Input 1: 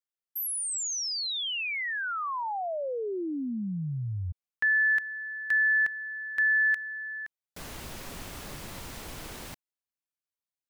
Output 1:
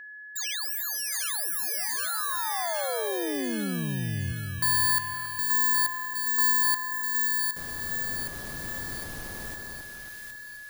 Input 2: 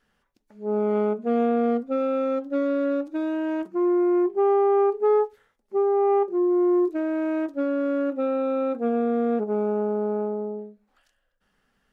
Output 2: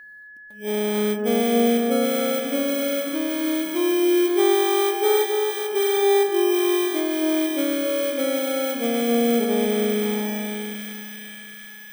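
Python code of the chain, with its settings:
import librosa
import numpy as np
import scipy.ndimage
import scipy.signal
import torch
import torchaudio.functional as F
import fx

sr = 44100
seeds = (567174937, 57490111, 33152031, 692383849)

y = fx.bit_reversed(x, sr, seeds[0], block=16)
y = fx.echo_split(y, sr, split_hz=1400.0, low_ms=272, high_ms=765, feedback_pct=52, wet_db=-3.5)
y = y + 10.0 ** (-41.0 / 20.0) * np.sin(2.0 * np.pi * 1700.0 * np.arange(len(y)) / sr)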